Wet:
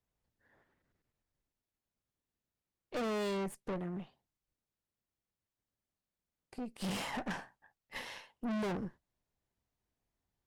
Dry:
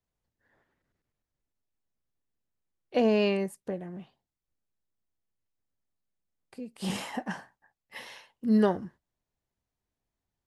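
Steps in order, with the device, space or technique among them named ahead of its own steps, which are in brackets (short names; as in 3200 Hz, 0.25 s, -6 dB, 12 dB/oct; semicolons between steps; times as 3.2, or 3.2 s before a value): tube preamp driven hard (tube stage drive 39 dB, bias 0.8; high shelf 5300 Hz -4 dB); gain +5 dB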